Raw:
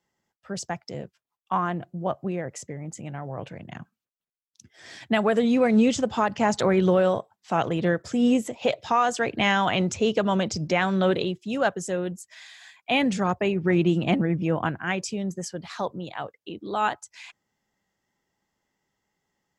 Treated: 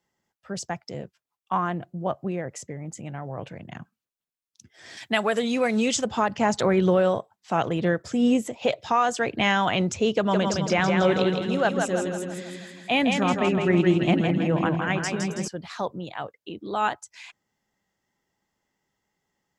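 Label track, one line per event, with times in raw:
4.970000	6.050000	tilt EQ +2.5 dB/octave
10.130000	15.480000	two-band feedback delay split 300 Hz, lows 239 ms, highs 163 ms, level -4 dB

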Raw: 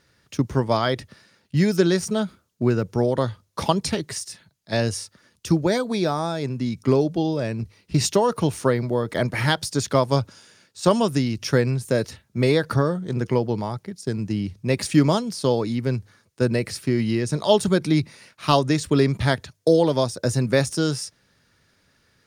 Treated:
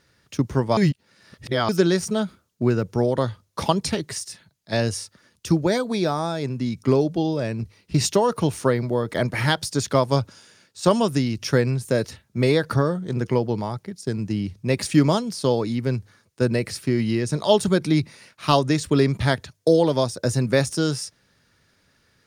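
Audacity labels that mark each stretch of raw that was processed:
0.770000	1.690000	reverse

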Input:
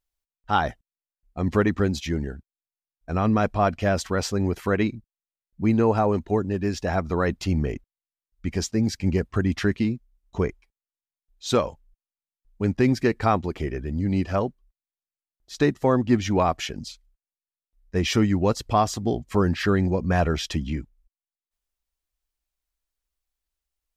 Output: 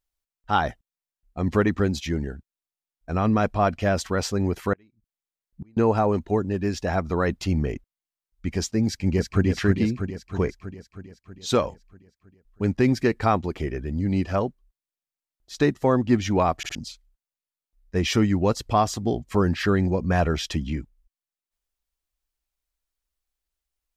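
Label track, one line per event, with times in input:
4.730000	5.770000	inverted gate shuts at -26 dBFS, range -35 dB
8.860000	9.460000	echo throw 320 ms, feedback 65%, level -5 dB
16.570000	16.570000	stutter in place 0.06 s, 3 plays

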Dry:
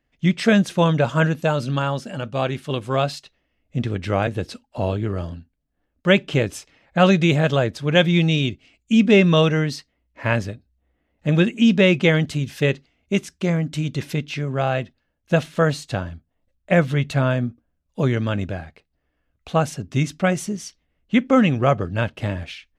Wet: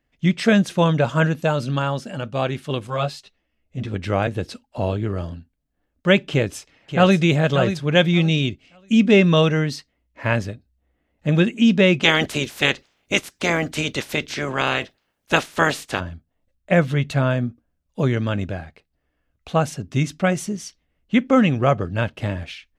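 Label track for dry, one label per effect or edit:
2.870000	3.940000	three-phase chorus
6.300000	7.210000	echo throw 580 ms, feedback 20%, level -9 dB
12.020000	15.990000	spectral peaks clipped ceiling under each frame's peak by 22 dB

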